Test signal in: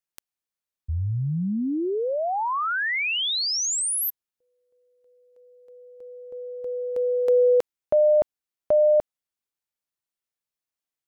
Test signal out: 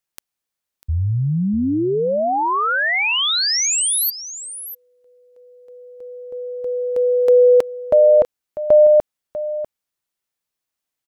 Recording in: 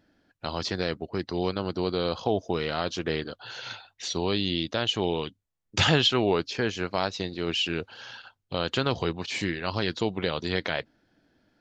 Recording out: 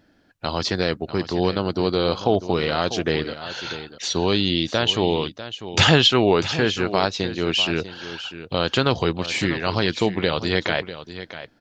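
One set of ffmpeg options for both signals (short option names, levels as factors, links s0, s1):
-af "aecho=1:1:646:0.224,volume=2.11"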